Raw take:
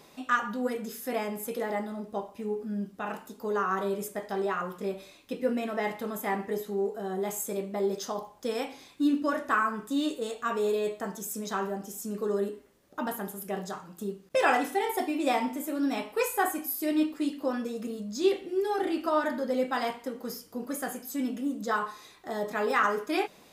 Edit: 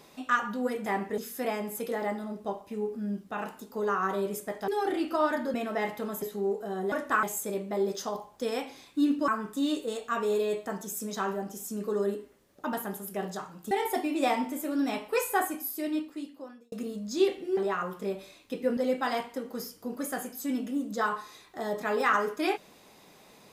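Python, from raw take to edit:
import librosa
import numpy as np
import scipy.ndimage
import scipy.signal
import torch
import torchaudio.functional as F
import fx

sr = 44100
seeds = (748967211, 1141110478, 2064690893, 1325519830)

y = fx.edit(x, sr, fx.swap(start_s=4.36, length_s=1.2, other_s=18.61, other_length_s=0.86),
    fx.move(start_s=6.24, length_s=0.32, to_s=0.86),
    fx.move(start_s=9.31, length_s=0.31, to_s=7.26),
    fx.cut(start_s=14.05, length_s=0.7),
    fx.fade_out_span(start_s=16.39, length_s=1.37), tone=tone)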